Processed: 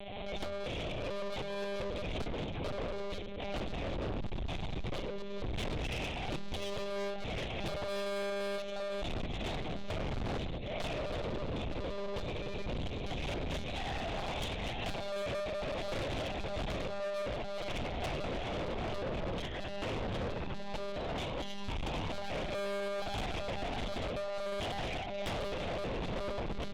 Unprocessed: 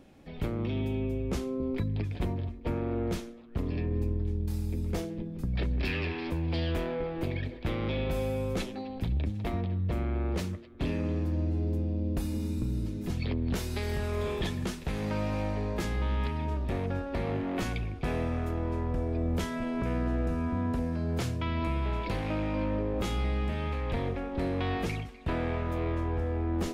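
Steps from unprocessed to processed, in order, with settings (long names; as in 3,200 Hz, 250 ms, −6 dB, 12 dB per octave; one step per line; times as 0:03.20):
spectral envelope flattened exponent 0.6
in parallel at +2 dB: brickwall limiter −26.5 dBFS, peak gain reduction 9 dB
on the sum: phaser with its sweep stopped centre 580 Hz, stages 4
comb filter 3.7 ms, depth 96%
on a send: echo with a time of its own for lows and highs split 560 Hz, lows 100 ms, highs 756 ms, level −6.5 dB
on the sum: transient designer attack +6 dB, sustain −10 dB
one-pitch LPC vocoder at 8 kHz 200 Hz
hum removal 80.17 Hz, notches 3
soft clipping −30.5 dBFS, distortion −5 dB
background raised ahead of every attack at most 24 dB per second
level −3.5 dB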